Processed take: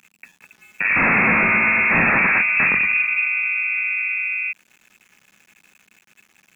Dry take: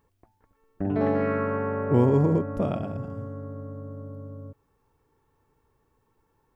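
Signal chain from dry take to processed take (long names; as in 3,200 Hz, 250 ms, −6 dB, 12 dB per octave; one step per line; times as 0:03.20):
0:01.31–0:03.73: parametric band 760 Hz −6 dB 0.77 octaves
sine wavefolder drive 16 dB, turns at −9.5 dBFS
voice inversion scrambler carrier 2,600 Hz
centre clipping without the shift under −44.5 dBFS
parametric band 200 Hz +15 dB 1.1 octaves
level −4.5 dB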